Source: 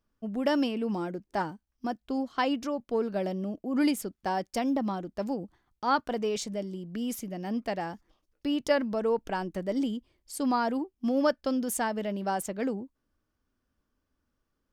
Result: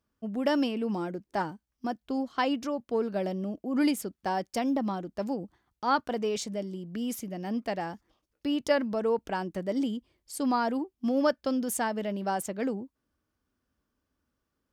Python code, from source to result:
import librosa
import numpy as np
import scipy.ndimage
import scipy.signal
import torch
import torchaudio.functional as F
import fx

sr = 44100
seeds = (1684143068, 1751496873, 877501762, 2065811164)

y = scipy.signal.sosfilt(scipy.signal.butter(2, 48.0, 'highpass', fs=sr, output='sos'), x)